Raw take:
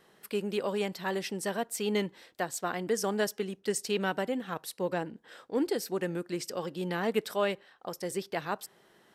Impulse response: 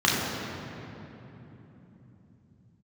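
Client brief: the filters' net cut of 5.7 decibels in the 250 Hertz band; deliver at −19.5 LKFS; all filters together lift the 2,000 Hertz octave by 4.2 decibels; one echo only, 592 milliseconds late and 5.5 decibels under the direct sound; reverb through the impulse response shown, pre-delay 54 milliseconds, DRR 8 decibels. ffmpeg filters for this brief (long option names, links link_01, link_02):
-filter_complex "[0:a]equalizer=frequency=250:width_type=o:gain=-8.5,equalizer=frequency=2000:width_type=o:gain=5.5,aecho=1:1:592:0.531,asplit=2[link_01][link_02];[1:a]atrim=start_sample=2205,adelay=54[link_03];[link_02][link_03]afir=irnorm=-1:irlink=0,volume=-26dB[link_04];[link_01][link_04]amix=inputs=2:normalize=0,volume=12.5dB"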